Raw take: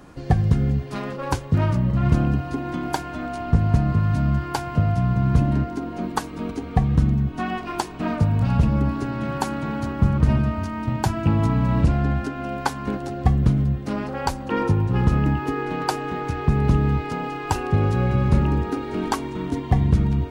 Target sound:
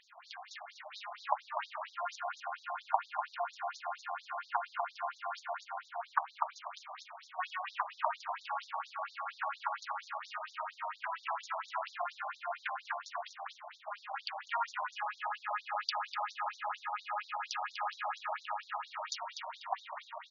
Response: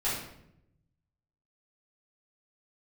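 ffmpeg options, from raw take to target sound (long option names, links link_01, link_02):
-filter_complex "[0:a]tremolo=f=210:d=0.621,asplit=2[link_01][link_02];[link_02]asplit=4[link_03][link_04][link_05][link_06];[link_03]adelay=246,afreqshift=85,volume=-6.5dB[link_07];[link_04]adelay=492,afreqshift=170,volume=-16.1dB[link_08];[link_05]adelay=738,afreqshift=255,volume=-25.8dB[link_09];[link_06]adelay=984,afreqshift=340,volume=-35.4dB[link_10];[link_07][link_08][link_09][link_10]amix=inputs=4:normalize=0[link_11];[link_01][link_11]amix=inputs=2:normalize=0,afftfilt=real='re*between(b*sr/1024,820*pow(5100/820,0.5+0.5*sin(2*PI*4.3*pts/sr))/1.41,820*pow(5100/820,0.5+0.5*sin(2*PI*4.3*pts/sr))*1.41)':imag='im*between(b*sr/1024,820*pow(5100/820,0.5+0.5*sin(2*PI*4.3*pts/sr))/1.41,820*pow(5100/820,0.5+0.5*sin(2*PI*4.3*pts/sr))*1.41)':win_size=1024:overlap=0.75,volume=1dB"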